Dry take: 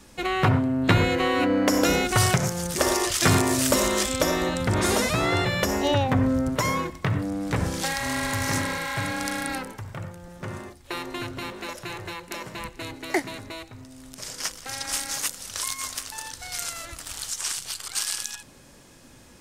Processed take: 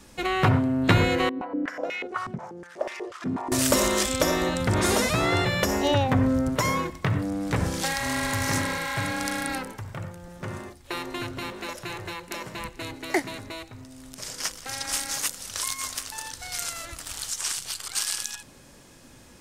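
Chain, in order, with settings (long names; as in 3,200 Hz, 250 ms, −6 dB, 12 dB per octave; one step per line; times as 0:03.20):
0:01.29–0:03.52: band-pass on a step sequencer 8.2 Hz 240–2,300 Hz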